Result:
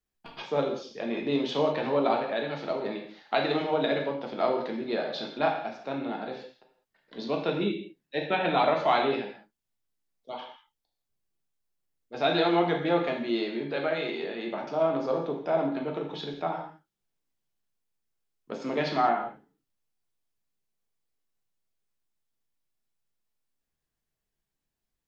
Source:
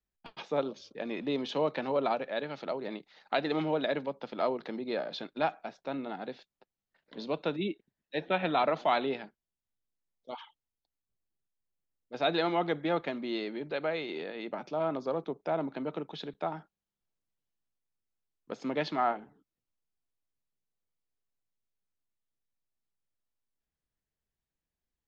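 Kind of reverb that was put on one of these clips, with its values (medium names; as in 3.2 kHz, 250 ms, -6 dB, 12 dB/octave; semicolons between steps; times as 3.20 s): gated-style reverb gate 230 ms falling, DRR 0.5 dB; trim +1.5 dB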